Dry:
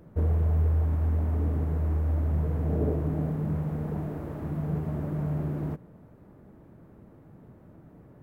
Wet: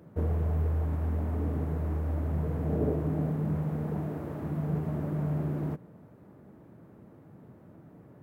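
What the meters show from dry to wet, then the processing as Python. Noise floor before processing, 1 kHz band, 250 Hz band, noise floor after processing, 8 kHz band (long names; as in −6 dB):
−53 dBFS, 0.0 dB, −0.5 dB, −54 dBFS, can't be measured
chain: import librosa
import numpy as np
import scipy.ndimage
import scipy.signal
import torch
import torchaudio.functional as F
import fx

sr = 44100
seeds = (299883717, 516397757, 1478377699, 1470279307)

y = scipy.signal.sosfilt(scipy.signal.butter(2, 94.0, 'highpass', fs=sr, output='sos'), x)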